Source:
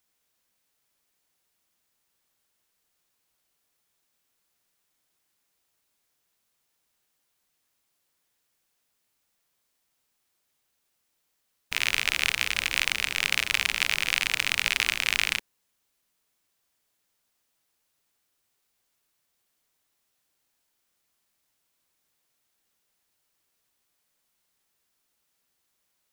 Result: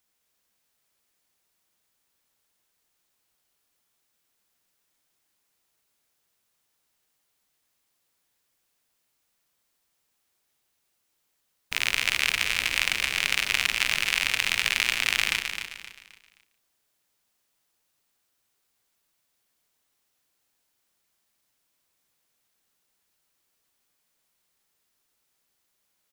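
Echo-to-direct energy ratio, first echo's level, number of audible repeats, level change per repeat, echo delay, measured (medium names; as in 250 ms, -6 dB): -6.0 dB, -15.0 dB, 6, no regular repeats, 144 ms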